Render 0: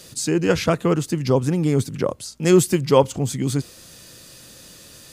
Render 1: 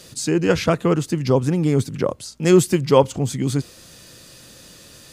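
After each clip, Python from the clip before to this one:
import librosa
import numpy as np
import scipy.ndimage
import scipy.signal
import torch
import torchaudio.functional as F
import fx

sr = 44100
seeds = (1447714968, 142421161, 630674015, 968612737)

y = fx.high_shelf(x, sr, hz=8000.0, db=-5.0)
y = y * 10.0 ** (1.0 / 20.0)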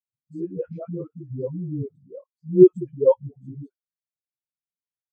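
y = fx.dispersion(x, sr, late='highs', ms=149.0, hz=320.0)
y = fx.spectral_expand(y, sr, expansion=2.5)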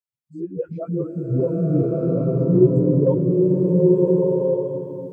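y = fx.recorder_agc(x, sr, target_db=-8.5, rise_db_per_s=12.0, max_gain_db=30)
y = fx.rev_bloom(y, sr, seeds[0], attack_ms=1380, drr_db=-5.0)
y = y * 10.0 ** (-4.5 / 20.0)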